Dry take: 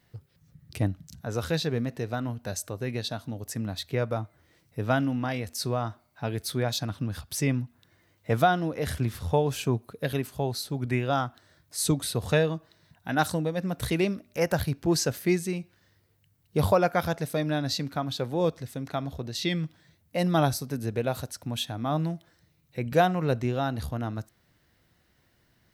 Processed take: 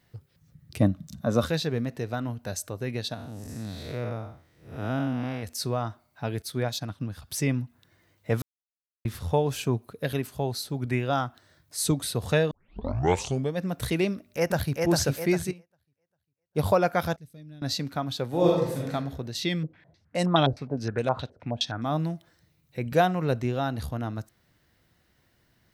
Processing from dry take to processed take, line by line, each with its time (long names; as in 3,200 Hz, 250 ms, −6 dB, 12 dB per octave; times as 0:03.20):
0:00.79–0:01.45: hollow resonant body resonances 220/570/1,100/3,600 Hz, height 10 dB → 13 dB, ringing for 25 ms
0:03.14–0:05.43: spectrum smeared in time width 217 ms
0:06.42–0:07.22: expander for the loud parts, over −44 dBFS
0:08.42–0:09.05: silence
0:12.51: tape start 1.05 s
0:14.10–0:14.81: delay throw 400 ms, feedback 45%, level −2.5 dB
0:15.51–0:16.66: expander for the loud parts 2.5 to 1, over −40 dBFS
0:17.16–0:17.62: guitar amp tone stack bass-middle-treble 10-0-1
0:18.28–0:18.92: thrown reverb, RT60 0.82 s, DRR −4 dB
0:19.63–0:21.86: low-pass on a step sequencer 9.6 Hz 460–7,800 Hz